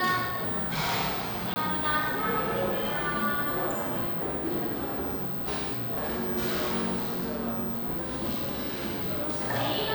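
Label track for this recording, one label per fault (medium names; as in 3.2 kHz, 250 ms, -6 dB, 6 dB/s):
1.540000	1.560000	dropout 20 ms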